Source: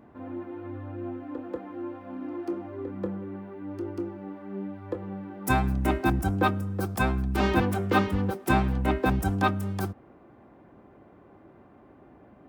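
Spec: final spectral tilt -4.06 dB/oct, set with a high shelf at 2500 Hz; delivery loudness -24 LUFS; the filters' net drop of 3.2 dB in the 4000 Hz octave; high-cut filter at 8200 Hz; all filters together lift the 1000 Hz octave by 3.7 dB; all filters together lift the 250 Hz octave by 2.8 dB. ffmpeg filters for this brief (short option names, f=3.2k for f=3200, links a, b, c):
-af "lowpass=8.2k,equalizer=f=250:t=o:g=3.5,equalizer=f=1k:t=o:g=4.5,highshelf=f=2.5k:g=4,equalizer=f=4k:t=o:g=-7.5,volume=3dB"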